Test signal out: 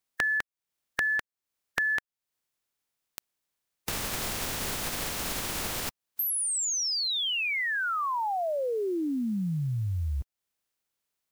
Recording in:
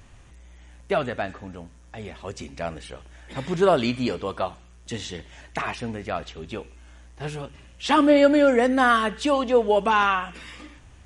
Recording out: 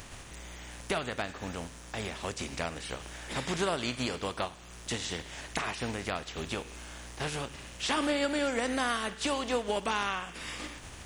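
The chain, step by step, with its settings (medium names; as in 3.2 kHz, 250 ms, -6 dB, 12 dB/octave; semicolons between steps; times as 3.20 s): spectral contrast reduction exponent 0.62; compression 3:1, threshold -35 dBFS; trim +2.5 dB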